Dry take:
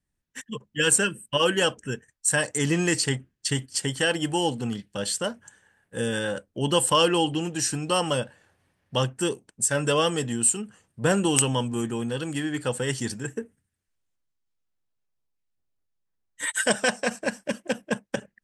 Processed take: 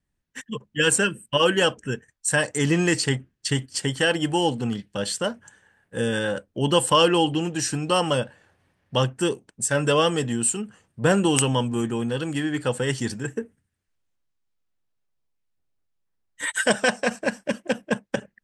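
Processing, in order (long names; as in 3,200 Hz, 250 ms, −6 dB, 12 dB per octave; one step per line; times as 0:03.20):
high-shelf EQ 6,800 Hz −8 dB
level +3 dB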